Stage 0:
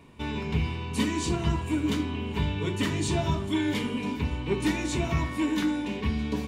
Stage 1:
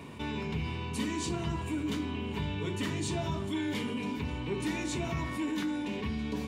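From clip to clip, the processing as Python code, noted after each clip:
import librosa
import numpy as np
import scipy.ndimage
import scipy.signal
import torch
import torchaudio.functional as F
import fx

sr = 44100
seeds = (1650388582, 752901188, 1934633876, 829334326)

y = scipy.signal.sosfilt(scipy.signal.butter(2, 78.0, 'highpass', fs=sr, output='sos'), x)
y = fx.env_flatten(y, sr, amount_pct=50)
y = y * 10.0 ** (-8.0 / 20.0)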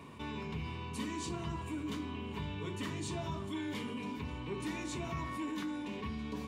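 y = fx.peak_eq(x, sr, hz=1100.0, db=7.5, octaves=0.23)
y = y * 10.0 ** (-6.0 / 20.0)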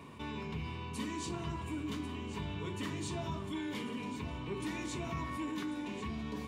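y = x + 10.0 ** (-12.5 / 20.0) * np.pad(x, (int(1092 * sr / 1000.0), 0))[:len(x)]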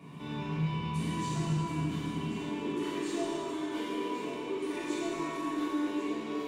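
y = fx.filter_sweep_highpass(x, sr, from_hz=150.0, to_hz=360.0, start_s=1.98, end_s=2.64, q=2.8)
y = 10.0 ** (-30.0 / 20.0) * np.tanh(y / 10.0 ** (-30.0 / 20.0))
y = fx.rev_plate(y, sr, seeds[0], rt60_s=2.6, hf_ratio=0.95, predelay_ms=0, drr_db=-9.0)
y = y * 10.0 ** (-6.0 / 20.0)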